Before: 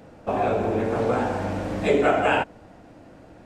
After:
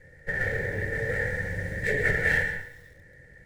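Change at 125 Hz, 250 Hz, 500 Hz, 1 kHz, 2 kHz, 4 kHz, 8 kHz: -0.5, -13.0, -10.0, -19.5, +5.5, -8.0, -1.0 dB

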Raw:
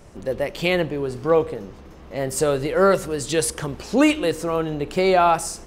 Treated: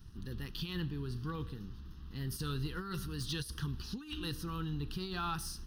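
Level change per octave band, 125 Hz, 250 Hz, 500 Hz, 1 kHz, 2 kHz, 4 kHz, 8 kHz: -7.0, -17.5, -29.0, -21.5, -19.0, -11.0, -19.0 dB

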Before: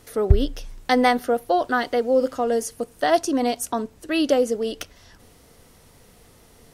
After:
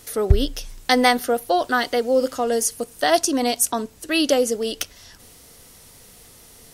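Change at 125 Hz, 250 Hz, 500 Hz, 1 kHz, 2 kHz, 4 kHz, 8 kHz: n/a, 0.0 dB, +0.5 dB, +1.0 dB, +3.5 dB, +7.0 dB, +10.0 dB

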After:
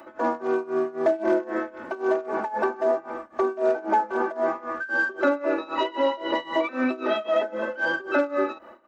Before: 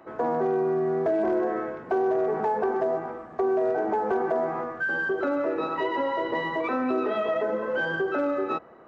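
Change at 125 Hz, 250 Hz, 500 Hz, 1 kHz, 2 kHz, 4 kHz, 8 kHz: under -10 dB, +0.5 dB, +0.5 dB, +1.0 dB, +2.5 dB, +6.5 dB, n/a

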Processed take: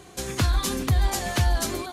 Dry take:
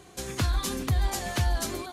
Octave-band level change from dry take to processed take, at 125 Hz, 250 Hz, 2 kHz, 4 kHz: +4.0, +4.0, +4.0, +4.0 dB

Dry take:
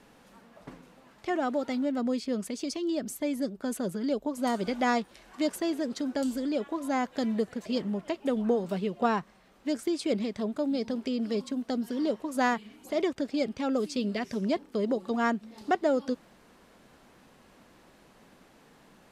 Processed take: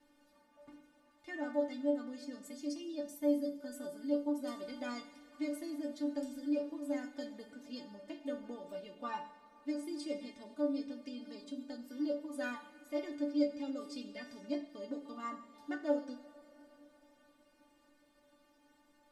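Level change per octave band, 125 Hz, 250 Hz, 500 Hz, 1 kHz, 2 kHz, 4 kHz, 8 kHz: under -20 dB, -8.5 dB, -9.0 dB, -15.0 dB, -11.5 dB, -11.5 dB, -12.0 dB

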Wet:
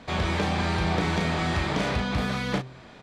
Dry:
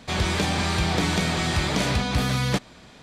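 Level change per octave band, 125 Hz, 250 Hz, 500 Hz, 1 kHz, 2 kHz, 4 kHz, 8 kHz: -3.0, -1.5, -0.5, -1.0, -2.0, -6.0, -10.5 dB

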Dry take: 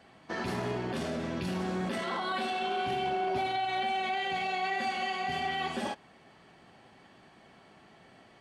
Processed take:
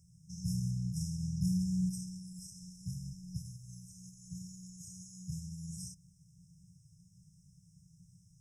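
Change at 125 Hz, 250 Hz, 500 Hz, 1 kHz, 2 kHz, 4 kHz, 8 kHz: +5.0 dB, -1.0 dB, under -40 dB, under -40 dB, under -40 dB, -16.5 dB, +5.5 dB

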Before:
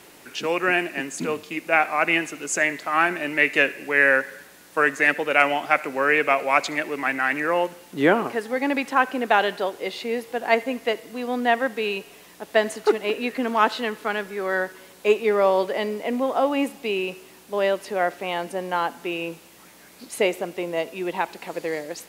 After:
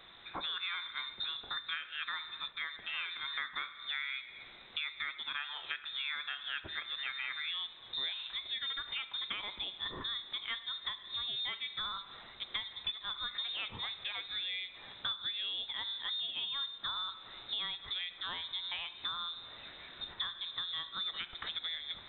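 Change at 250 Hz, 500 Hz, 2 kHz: -33.0, -37.0, -18.0 dB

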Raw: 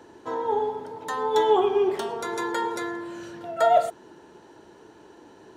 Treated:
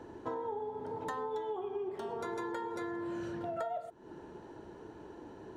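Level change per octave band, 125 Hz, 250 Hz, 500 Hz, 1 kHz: -1.5, -8.0, -14.0, -14.5 dB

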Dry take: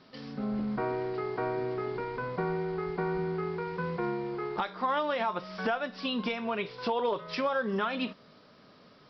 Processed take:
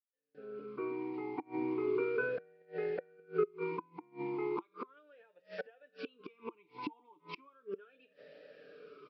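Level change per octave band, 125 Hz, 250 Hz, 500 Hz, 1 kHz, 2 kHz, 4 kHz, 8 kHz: -15.5 dB, -7.5 dB, -5.5 dB, -14.0 dB, -8.5 dB, -19.0 dB, n/a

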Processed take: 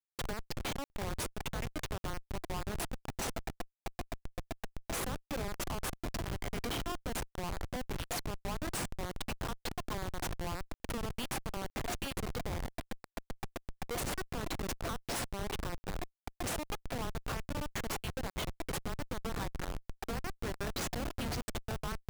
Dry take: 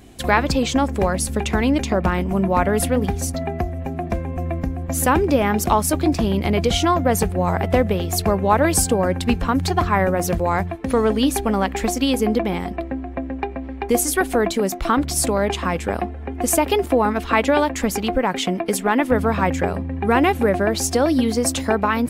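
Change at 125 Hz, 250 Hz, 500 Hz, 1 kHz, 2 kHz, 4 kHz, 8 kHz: -17.0, -22.5, -22.5, -20.5, -17.5, -14.0, -17.5 dB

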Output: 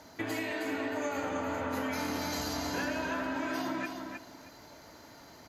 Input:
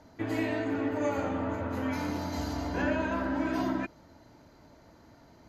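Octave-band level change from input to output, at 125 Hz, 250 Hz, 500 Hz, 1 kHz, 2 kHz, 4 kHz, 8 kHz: -8.0, -4.5, -3.0, -0.5, +1.0, +5.5, +7.5 dB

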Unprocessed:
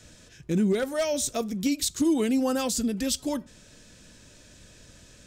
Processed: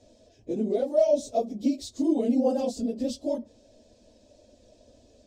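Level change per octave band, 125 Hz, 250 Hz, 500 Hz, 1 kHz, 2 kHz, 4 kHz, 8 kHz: under -10 dB, -1.5 dB, +3.5 dB, 0.0 dB, under -15 dB, -11.0 dB, -14.5 dB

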